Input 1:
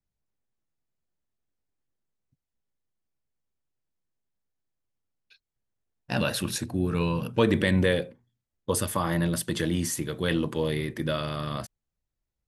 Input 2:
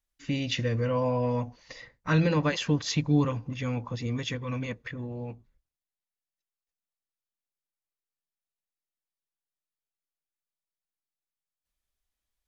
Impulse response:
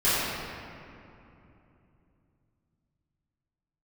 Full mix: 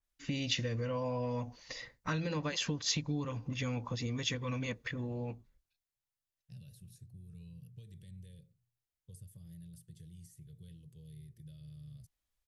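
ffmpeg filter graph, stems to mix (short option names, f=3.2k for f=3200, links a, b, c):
-filter_complex "[0:a]acrossover=split=440|3300[a][b][c];[a]acompressor=threshold=-33dB:ratio=4[d];[b]acompressor=threshold=-55dB:ratio=4[e];[c]acompressor=threshold=-39dB:ratio=4[f];[d][e][f]amix=inputs=3:normalize=0,firequalizer=gain_entry='entry(150,0);entry(270,-30);entry(410,-16);entry(970,-28);entry(1900,-18);entry(9100,-9)':delay=0.05:min_phase=1,adelay=400,volume=-11.5dB[g];[1:a]acompressor=threshold=-31dB:ratio=6,adynamicequalizer=threshold=0.00251:dfrequency=3100:dqfactor=0.7:tfrequency=3100:tqfactor=0.7:attack=5:release=100:ratio=0.375:range=3.5:mode=boostabove:tftype=highshelf,volume=-1.5dB[h];[g][h]amix=inputs=2:normalize=0"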